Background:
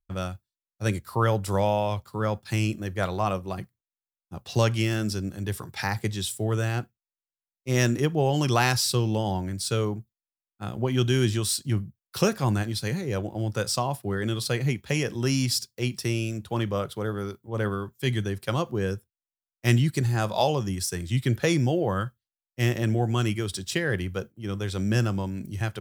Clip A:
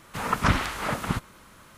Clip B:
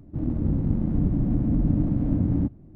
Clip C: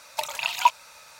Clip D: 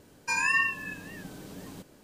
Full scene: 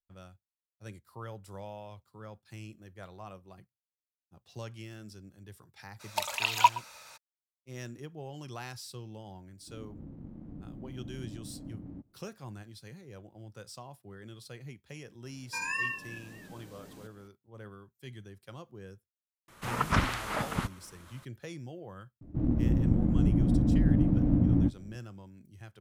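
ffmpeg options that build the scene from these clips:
ffmpeg -i bed.wav -i cue0.wav -i cue1.wav -i cue2.wav -i cue3.wav -filter_complex "[2:a]asplit=2[link_01][link_02];[0:a]volume=-20dB[link_03];[3:a]aecho=1:1:119:0.112[link_04];[link_01]lowshelf=frequency=150:gain=-9[link_05];[link_02]asplit=2[link_06][link_07];[link_07]adelay=17,volume=-12.5dB[link_08];[link_06][link_08]amix=inputs=2:normalize=0[link_09];[link_04]atrim=end=1.19,asetpts=PTS-STARTPTS,volume=-2.5dB,afade=type=in:duration=0.02,afade=type=out:start_time=1.17:duration=0.02,adelay=5990[link_10];[link_05]atrim=end=2.75,asetpts=PTS-STARTPTS,volume=-18dB,afade=type=in:duration=0.004:curve=hsin,afade=type=out:start_time=2.746:duration=0.004:curve=hsin,adelay=420714S[link_11];[4:a]atrim=end=2.03,asetpts=PTS-STARTPTS,volume=-7.5dB,afade=type=in:duration=0.004:curve=hsin,afade=type=out:start_time=2.026:duration=0.004:curve=hsin,adelay=15250[link_12];[1:a]atrim=end=1.77,asetpts=PTS-STARTPTS,volume=-4.5dB,afade=type=in:duration=0.004:curve=hsin,afade=type=out:start_time=1.766:duration=0.004:curve=hsin,adelay=19480[link_13];[link_09]atrim=end=2.75,asetpts=PTS-STARTPTS,volume=-2dB,afade=type=in:duration=0.004:curve=hsin,afade=type=out:start_time=2.746:duration=0.004:curve=hsin,adelay=22210[link_14];[link_03][link_10][link_11][link_12][link_13][link_14]amix=inputs=6:normalize=0" out.wav

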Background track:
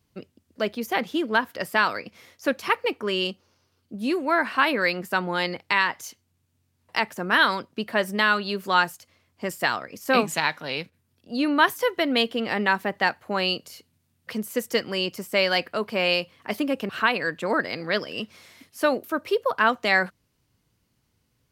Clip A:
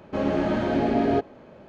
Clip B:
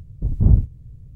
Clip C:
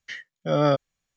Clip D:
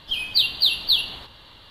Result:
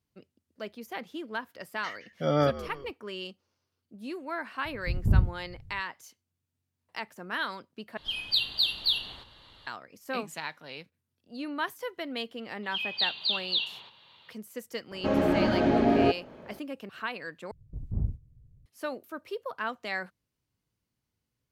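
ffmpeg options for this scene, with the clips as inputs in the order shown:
ffmpeg -i bed.wav -i cue0.wav -i cue1.wav -i cue2.wav -i cue3.wav -filter_complex "[2:a]asplit=2[link_01][link_02];[4:a]asplit=2[link_03][link_04];[0:a]volume=-13dB[link_05];[3:a]asplit=5[link_06][link_07][link_08][link_09][link_10];[link_07]adelay=168,afreqshift=-70,volume=-15.5dB[link_11];[link_08]adelay=336,afreqshift=-140,volume=-21.9dB[link_12];[link_09]adelay=504,afreqshift=-210,volume=-28.3dB[link_13];[link_10]adelay=672,afreqshift=-280,volume=-34.6dB[link_14];[link_06][link_11][link_12][link_13][link_14]amix=inputs=5:normalize=0[link_15];[link_03]lowpass=11000[link_16];[link_04]highpass=frequency=130:width=0.5412,highpass=frequency=130:width=1.3066,equalizer=frequency=280:width_type=q:width=4:gain=-10,equalizer=frequency=940:width_type=q:width=4:gain=6,equalizer=frequency=2500:width_type=q:width=4:gain=9,equalizer=frequency=3500:width_type=q:width=4:gain=4,lowpass=frequency=6500:width=0.5412,lowpass=frequency=6500:width=1.3066[link_17];[link_05]asplit=3[link_18][link_19][link_20];[link_18]atrim=end=7.974[link_21];[link_16]atrim=end=1.7,asetpts=PTS-STARTPTS,volume=-7dB[link_22];[link_19]atrim=start=9.666:end=17.514[link_23];[link_02]atrim=end=1.15,asetpts=PTS-STARTPTS,volume=-16dB[link_24];[link_20]atrim=start=18.656[link_25];[link_15]atrim=end=1.16,asetpts=PTS-STARTPTS,volume=-4dB,afade=type=in:duration=0.004:curve=hsin,afade=type=out:start_time=1.156:duration=0.004:curve=hsin,adelay=1750[link_26];[link_01]atrim=end=1.15,asetpts=PTS-STARTPTS,volume=-8dB,afade=type=in:duration=0.004:curve=hsin,afade=type=out:start_time=1.146:duration=0.004:curve=hsin,adelay=205065S[link_27];[link_17]atrim=end=1.7,asetpts=PTS-STARTPTS,volume=-12.5dB,afade=type=in:duration=0.004:curve=hsin,afade=type=out:start_time=1.696:duration=0.004:curve=hsin,adelay=12630[link_28];[1:a]atrim=end=1.68,asetpts=PTS-STARTPTS,volume=-0.5dB,afade=type=in:duration=0.004:curve=hsin,afade=type=out:start_time=1.676:duration=0.004:curve=hsin,adelay=14910[link_29];[link_21][link_22]acrossfade=duration=0.004:curve1=hsin:curve2=hsin[link_30];[link_30][link_23]acrossfade=duration=0.004:curve1=hsin:curve2=hsin[link_31];[link_31][link_24]acrossfade=duration=0.004:curve1=hsin:curve2=hsin[link_32];[link_32][link_25]acrossfade=duration=0.004:curve1=hsin:curve2=hsin[link_33];[link_33][link_26][link_27][link_28][link_29]amix=inputs=5:normalize=0" out.wav

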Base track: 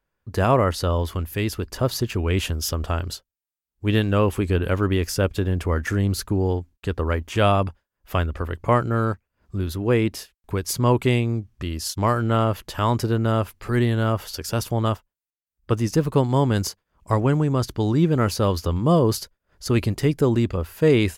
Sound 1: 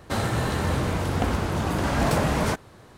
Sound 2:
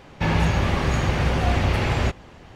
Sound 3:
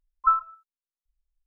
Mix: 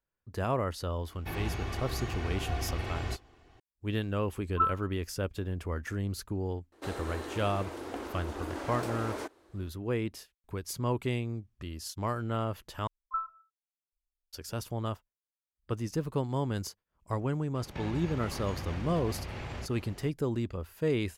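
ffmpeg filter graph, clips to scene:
ffmpeg -i bed.wav -i cue0.wav -i cue1.wav -i cue2.wav -filter_complex "[2:a]asplit=2[link_01][link_02];[3:a]asplit=2[link_03][link_04];[0:a]volume=-12dB[link_05];[link_01]aecho=1:1:2.7:0.58[link_06];[1:a]lowshelf=frequency=230:width_type=q:width=3:gain=-11[link_07];[link_02]acompressor=threshold=-30dB:ratio=6:attack=3.2:release=140:knee=1:detection=peak[link_08];[link_05]asplit=2[link_09][link_10];[link_09]atrim=end=12.874[link_11];[link_04]atrim=end=1.46,asetpts=PTS-STARTPTS,volume=-13dB[link_12];[link_10]atrim=start=14.326[link_13];[link_06]atrim=end=2.55,asetpts=PTS-STARTPTS,volume=-15.5dB,afade=type=in:duration=0.004:curve=hsin,afade=type=out:start_time=2.546:duration=0.004:curve=hsin,adelay=1050[link_14];[link_03]atrim=end=1.46,asetpts=PTS-STARTPTS,volume=-6.5dB,afade=type=in:duration=0.004:curve=hsin,afade=type=out:start_time=1.456:duration=0.004:curve=hsin,adelay=190953S[link_15];[link_07]atrim=end=2.97,asetpts=PTS-STARTPTS,volume=-14dB,afade=type=in:duration=0.004:curve=hsin,afade=type=out:start_time=2.966:duration=0.004:curve=hsin,adelay=6720[link_16];[link_08]atrim=end=2.55,asetpts=PTS-STARTPTS,volume=-6dB,afade=type=in:duration=0.004:curve=hsin,afade=type=out:start_time=2.546:duration=0.004:curve=hsin,adelay=17550[link_17];[link_11][link_12]acrossfade=duration=0.004:curve1=hsin:curve2=hsin[link_18];[link_18][link_13]acrossfade=duration=0.004:curve1=hsin:curve2=hsin[link_19];[link_19][link_14][link_15][link_16][link_17]amix=inputs=5:normalize=0" out.wav

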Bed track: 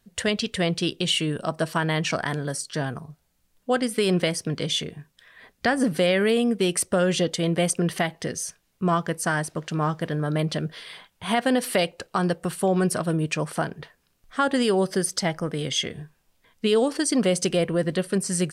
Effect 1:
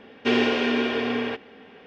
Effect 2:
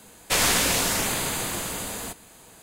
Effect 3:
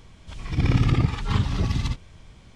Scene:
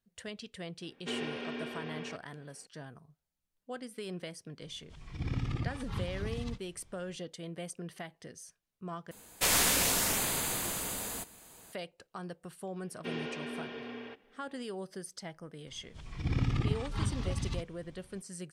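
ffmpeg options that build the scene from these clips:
ffmpeg -i bed.wav -i cue0.wav -i cue1.wav -i cue2.wav -filter_complex "[1:a]asplit=2[link_01][link_02];[3:a]asplit=2[link_03][link_04];[0:a]volume=-19dB[link_05];[2:a]highshelf=frequency=10000:gain=7[link_06];[link_05]asplit=2[link_07][link_08];[link_07]atrim=end=9.114[link_09];[link_06]atrim=end=2.62,asetpts=PTS-STARTPTS,volume=-7dB[link_10];[link_08]atrim=start=11.726[link_11];[link_01]atrim=end=1.86,asetpts=PTS-STARTPTS,volume=-16.5dB,afade=type=in:duration=0.004:curve=hsin,afade=type=out:start_time=1.856:duration=0.004:curve=hsin,adelay=810[link_12];[link_03]atrim=end=2.55,asetpts=PTS-STARTPTS,volume=-14.5dB,afade=type=in:duration=0.004:curve=hsin,afade=type=out:start_time=2.546:duration=0.004:curve=hsin,adelay=4620[link_13];[link_02]atrim=end=1.86,asetpts=PTS-STARTPTS,volume=-17.5dB,afade=type=in:duration=0.004:curve=hsin,afade=type=out:start_time=1.856:duration=0.004:curve=hsin,adelay=12790[link_14];[link_04]atrim=end=2.55,asetpts=PTS-STARTPTS,volume=-10.5dB,afade=type=in:duration=0.004:curve=hsin,afade=type=out:start_time=2.546:duration=0.004:curve=hsin,adelay=15670[link_15];[link_09][link_10]acrossfade=duration=0.004:curve1=hsin:curve2=hsin[link_16];[link_16][link_11]acrossfade=duration=0.004:curve1=hsin:curve2=hsin[link_17];[link_17][link_12][link_13][link_14][link_15]amix=inputs=5:normalize=0" out.wav

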